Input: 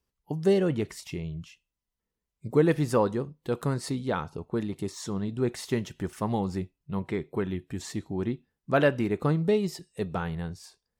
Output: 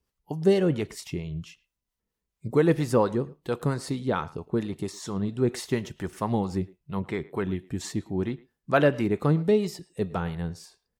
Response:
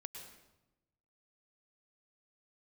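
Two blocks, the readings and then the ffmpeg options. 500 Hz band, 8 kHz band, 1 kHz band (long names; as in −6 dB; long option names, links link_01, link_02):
+1.5 dB, +1.5 dB, +2.0 dB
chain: -filter_complex "[0:a]acrossover=split=570[link_01][link_02];[link_01]aeval=exprs='val(0)*(1-0.5/2+0.5/2*cos(2*PI*4.4*n/s))':channel_layout=same[link_03];[link_02]aeval=exprs='val(0)*(1-0.5/2-0.5/2*cos(2*PI*4.4*n/s))':channel_layout=same[link_04];[link_03][link_04]amix=inputs=2:normalize=0,asplit=2[link_05][link_06];[link_06]adelay=110,highpass=300,lowpass=3400,asoftclip=type=hard:threshold=-20dB,volume=-20dB[link_07];[link_05][link_07]amix=inputs=2:normalize=0,volume=4dB"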